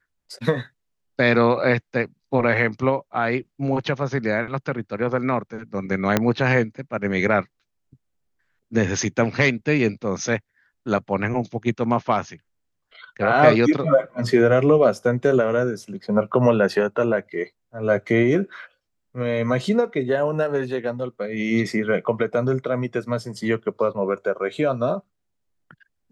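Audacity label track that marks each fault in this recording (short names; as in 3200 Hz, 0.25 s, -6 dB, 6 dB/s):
6.170000	6.170000	pop -3 dBFS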